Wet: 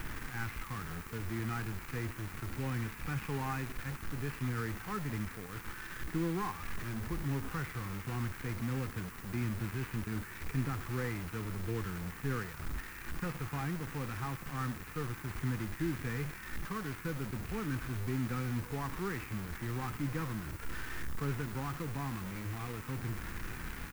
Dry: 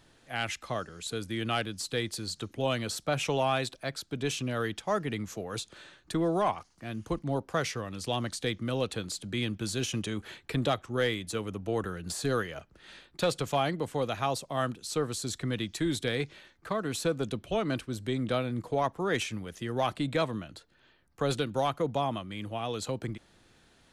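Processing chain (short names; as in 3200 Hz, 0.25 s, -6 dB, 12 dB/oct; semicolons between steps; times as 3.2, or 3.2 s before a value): delta modulation 16 kbps, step -31 dBFS; low shelf 75 Hz +10 dB; fixed phaser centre 1500 Hz, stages 4; on a send: echo 0.109 s -22.5 dB; on the sum: harmonic-percussive split percussive -7 dB; in parallel at -6 dB: bit-crush 6-bit; on the sum: added noise blue -49 dBFS; gain -6 dB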